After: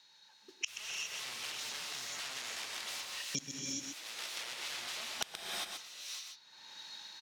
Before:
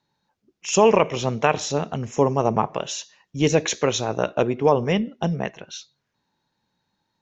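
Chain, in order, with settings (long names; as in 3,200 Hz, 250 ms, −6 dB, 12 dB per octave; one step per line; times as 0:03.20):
downward expander −43 dBFS
high-shelf EQ 3,600 Hz +10 dB
automatic gain control gain up to 11 dB
wrap-around overflow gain 18 dB
resonant band-pass 3,500 Hz, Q 0.81
gate with flip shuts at −32 dBFS, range −38 dB
single-tap delay 126 ms −8 dB
reverb whose tail is shaped and stops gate 430 ms rising, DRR −0.5 dB
multiband upward and downward compressor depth 100%
level +14.5 dB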